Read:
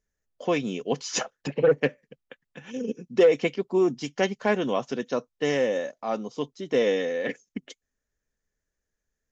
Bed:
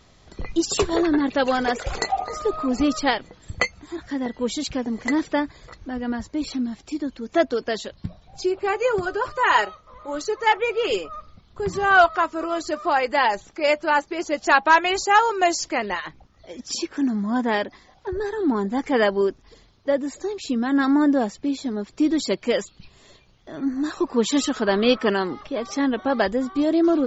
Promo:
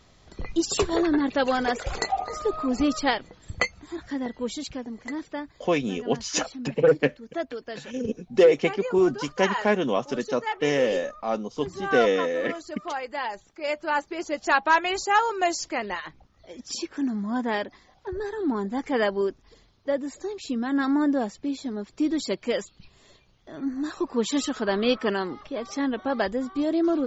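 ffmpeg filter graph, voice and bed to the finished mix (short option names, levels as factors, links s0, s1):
-filter_complex "[0:a]adelay=5200,volume=1.19[s0];[1:a]volume=1.58,afade=t=out:st=4.06:d=0.95:silence=0.375837,afade=t=in:st=13.55:d=0.48:silence=0.473151[s1];[s0][s1]amix=inputs=2:normalize=0"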